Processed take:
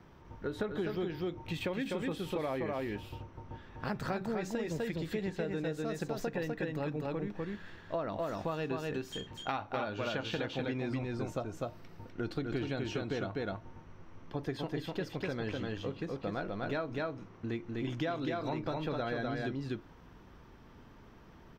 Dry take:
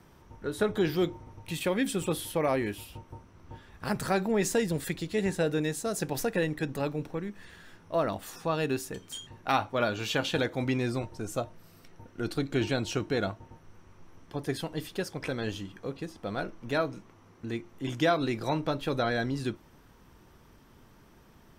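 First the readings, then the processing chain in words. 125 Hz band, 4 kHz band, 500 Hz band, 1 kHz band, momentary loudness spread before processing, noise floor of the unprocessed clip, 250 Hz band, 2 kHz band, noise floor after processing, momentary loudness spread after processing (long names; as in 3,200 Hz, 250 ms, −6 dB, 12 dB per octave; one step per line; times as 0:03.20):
−4.0 dB, −7.0 dB, −5.5 dB, −6.0 dB, 13 LU, −57 dBFS, −4.5 dB, −6.0 dB, −56 dBFS, 14 LU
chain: parametric band 10,000 Hz −14 dB 0.88 octaves
single-tap delay 250 ms −3 dB
downward compressor, threshold −32 dBFS, peak gain reduction 11.5 dB
high-shelf EQ 6,900 Hz −8 dB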